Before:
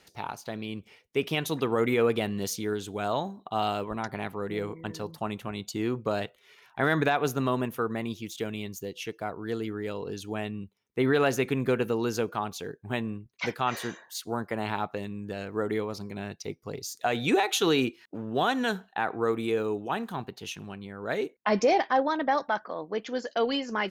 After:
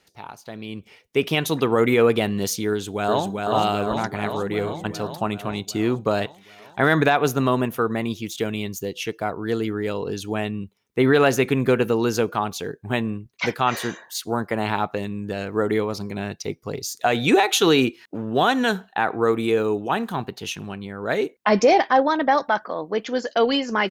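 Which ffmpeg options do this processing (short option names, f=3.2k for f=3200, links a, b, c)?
-filter_complex "[0:a]asplit=2[a][b];[b]afade=t=in:st=2.69:d=0.01,afade=t=out:st=3.31:d=0.01,aecho=0:1:390|780|1170|1560|1950|2340|2730|3120|3510|3900|4290|4680:0.707946|0.495562|0.346893|0.242825|0.169978|0.118984|0.0832891|0.0583024|0.0408117|0.0285682|0.0199977|0.0139984[c];[a][c]amix=inputs=2:normalize=0,dynaudnorm=f=140:g=11:m=11dB,volume=-3dB"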